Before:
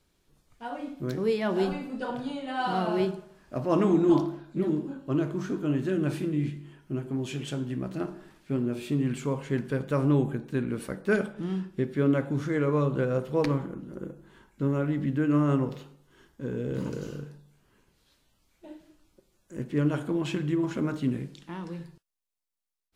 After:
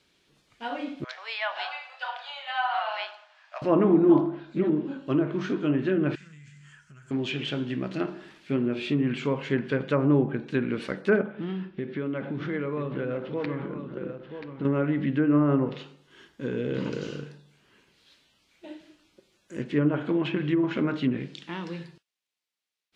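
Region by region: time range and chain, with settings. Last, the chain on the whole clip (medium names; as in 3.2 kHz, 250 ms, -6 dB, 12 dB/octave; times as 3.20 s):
1.04–3.62 s: steep high-pass 680 Hz 48 dB/octave + distance through air 100 m
6.15–7.11 s: FFT filter 110 Hz 0 dB, 190 Hz -10 dB, 320 Hz -30 dB, 460 Hz -18 dB, 770 Hz -15 dB, 1.5 kHz +4 dB, 2.3 kHz -6 dB, 3.8 kHz -8 dB, 7.4 kHz +13 dB, 12 kHz -9 dB + compression 8:1, threshold -47 dBFS
11.22–14.65 s: compression 5:1, threshold -29 dBFS + distance through air 270 m + delay 982 ms -9 dB
whole clip: frequency weighting D; low-pass that closes with the level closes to 1.2 kHz, closed at -22.5 dBFS; treble shelf 3 kHz -9.5 dB; trim +4 dB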